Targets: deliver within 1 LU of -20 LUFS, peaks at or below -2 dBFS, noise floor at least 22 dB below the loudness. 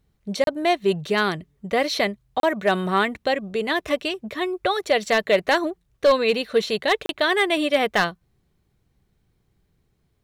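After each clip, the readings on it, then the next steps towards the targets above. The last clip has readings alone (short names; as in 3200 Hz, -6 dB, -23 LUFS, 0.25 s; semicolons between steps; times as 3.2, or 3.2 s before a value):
clipped 0.2%; flat tops at -10.5 dBFS; dropouts 3; longest dropout 32 ms; loudness -22.5 LUFS; peak -10.5 dBFS; loudness target -20.0 LUFS
-> clip repair -10.5 dBFS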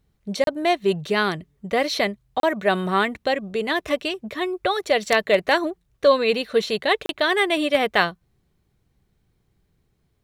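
clipped 0.0%; dropouts 3; longest dropout 32 ms
-> interpolate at 0.44/2.4/7.06, 32 ms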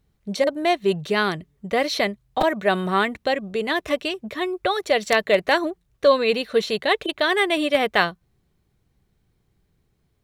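dropouts 0; loudness -22.0 LUFS; peak -1.5 dBFS; loudness target -20.0 LUFS
-> gain +2 dB; limiter -2 dBFS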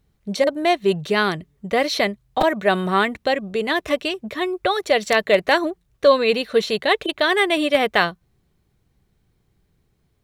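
loudness -20.0 LUFS; peak -2.0 dBFS; noise floor -67 dBFS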